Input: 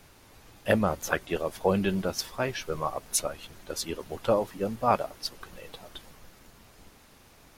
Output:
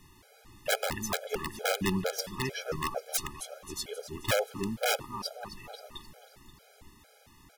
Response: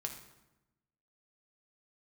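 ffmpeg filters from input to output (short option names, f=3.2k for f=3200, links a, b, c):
-af "aecho=1:1:265|530|795|1060|1325:0.237|0.123|0.0641|0.0333|0.0173,aeval=exprs='(mod(7.5*val(0)+1,2)-1)/7.5':c=same,afftfilt=real='re*gt(sin(2*PI*2.2*pts/sr)*(1-2*mod(floor(b*sr/1024/420),2)),0)':imag='im*gt(sin(2*PI*2.2*pts/sr)*(1-2*mod(floor(b*sr/1024/420),2)),0)':win_size=1024:overlap=0.75"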